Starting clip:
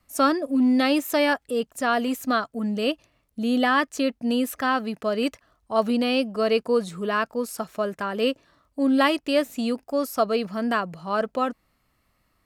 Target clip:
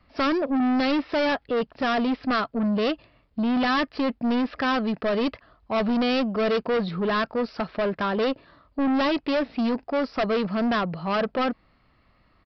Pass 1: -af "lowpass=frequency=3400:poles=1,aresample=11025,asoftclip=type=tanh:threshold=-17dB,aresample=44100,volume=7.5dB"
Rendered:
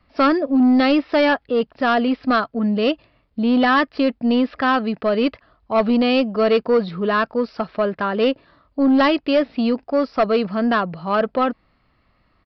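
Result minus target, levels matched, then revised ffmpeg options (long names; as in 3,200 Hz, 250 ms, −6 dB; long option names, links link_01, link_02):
soft clipping: distortion −9 dB
-af "lowpass=frequency=3400:poles=1,aresample=11025,asoftclip=type=tanh:threshold=-28dB,aresample=44100,volume=7.5dB"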